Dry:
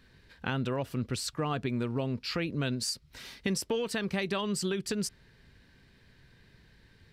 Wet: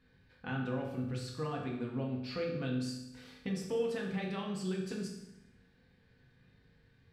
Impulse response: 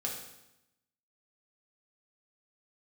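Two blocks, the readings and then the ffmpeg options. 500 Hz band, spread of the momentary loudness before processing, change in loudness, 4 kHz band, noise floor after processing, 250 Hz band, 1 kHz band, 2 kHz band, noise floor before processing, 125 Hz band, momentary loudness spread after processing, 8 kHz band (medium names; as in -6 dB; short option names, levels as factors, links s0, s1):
-3.0 dB, 4 LU, -5.0 dB, -11.0 dB, -67 dBFS, -3.5 dB, -6.0 dB, -7.0 dB, -61 dBFS, -4.0 dB, 10 LU, -14.5 dB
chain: -filter_complex "[0:a]highshelf=f=4600:g=-11.5[s0];[1:a]atrim=start_sample=2205[s1];[s0][s1]afir=irnorm=-1:irlink=0,volume=0.398"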